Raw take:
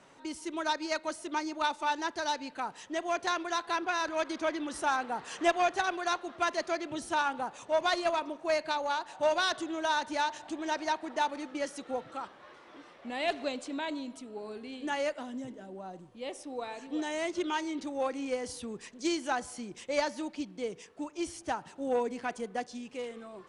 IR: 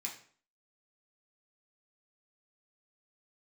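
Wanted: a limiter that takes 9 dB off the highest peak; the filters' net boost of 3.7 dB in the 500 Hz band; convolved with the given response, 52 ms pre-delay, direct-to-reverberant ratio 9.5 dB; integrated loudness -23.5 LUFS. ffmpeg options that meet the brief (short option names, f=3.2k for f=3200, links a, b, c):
-filter_complex "[0:a]equalizer=f=500:t=o:g=5,alimiter=limit=-22.5dB:level=0:latency=1,asplit=2[a][b];[1:a]atrim=start_sample=2205,adelay=52[c];[b][c]afir=irnorm=-1:irlink=0,volume=-9dB[d];[a][d]amix=inputs=2:normalize=0,volume=10.5dB"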